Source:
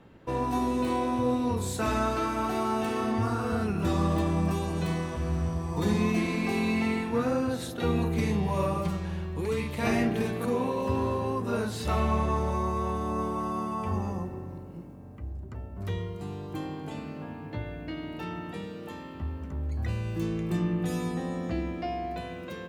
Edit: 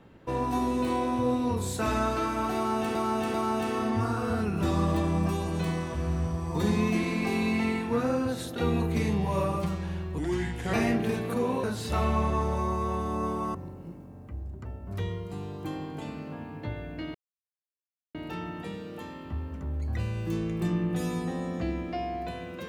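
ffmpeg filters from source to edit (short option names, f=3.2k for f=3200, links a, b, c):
-filter_complex "[0:a]asplit=8[a][b][c][d][e][f][g][h];[a]atrim=end=2.952[i];[b]atrim=start=2.558:end=2.952[j];[c]atrim=start=2.558:end=9.404[k];[d]atrim=start=9.4:end=9.85,asetpts=PTS-STARTPTS,asetrate=35721,aresample=44100[l];[e]atrim=start=9.846:end=10.752[m];[f]atrim=start=11.588:end=13.502[n];[g]atrim=start=14.438:end=18.04,asetpts=PTS-STARTPTS,afade=t=out:st=3.598:d=0.004:c=hsin,apad=pad_dur=1[o];[h]atrim=start=18.04,asetpts=PTS-STARTPTS,afade=t=in:d=0.004:c=hsin[p];[i][j]acrossfade=d=0.004:c1=hsin:c2=hsin[q];[q][k]acrossfade=d=0.004:c1=hsin:c2=hsin[r];[r][l]acrossfade=d=0.004:c1=hsin:c2=hsin[s];[s][m]acrossfade=d=0.004:c1=hsin:c2=hsin[t];[t][n]acrossfade=d=0.004:c1=hsin:c2=hsin[u];[o][p]concat=n=2:v=0:a=1[v];[u][v]acrossfade=d=0.004:c1=hsin:c2=hsin"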